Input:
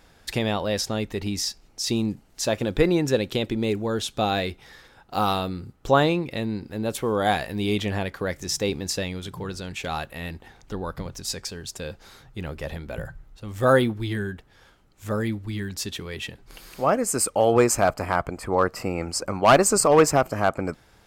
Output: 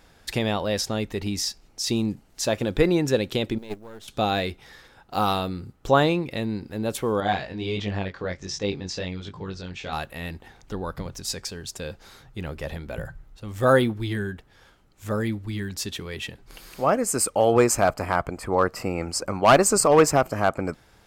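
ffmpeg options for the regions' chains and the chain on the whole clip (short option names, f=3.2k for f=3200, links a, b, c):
-filter_complex "[0:a]asettb=1/sr,asplit=3[a][b][c];[a]atrim=end=3.584[d];[b]atrim=start=3.58:end=4.08,asetpts=PTS-STARTPTS,afade=t=in:d=0.004:c=qsin,afade=t=out:st=0.496:d=0.004:c=qsin,aeval=exprs='if(lt(val(0),0),0.251*val(0),val(0))':c=same,agate=range=-13dB:threshold=-25dB:ratio=16:release=100:detection=peak,acrusher=bits=7:mode=log:mix=0:aa=0.000001[e];[c]atrim=start=4.076[f];[d][e]acrossfade=d=0.004:c1=hsin:c2=qsin[g];[g][f]acrossfade=d=0.004:c1=qsin:c2=hsin,asettb=1/sr,asplit=3[h][i][j];[h]atrim=end=7.204[k];[i]atrim=start=7.2:end=9.93,asetpts=PTS-STARTPTS,afade=t=in:d=0.004:c=qsin,afade=t=out:st=2.726:d=0.004:c=qsin,lowpass=f=6.1k:w=0.5412,lowpass=f=6.1k:w=1.3066,flanger=delay=19.5:depth=3.2:speed=1.4[l];[j]atrim=start=9.926[m];[k][l]acrossfade=d=0.004:c1=hsin:c2=qsin[n];[n][m]acrossfade=d=0.004:c1=qsin:c2=hsin"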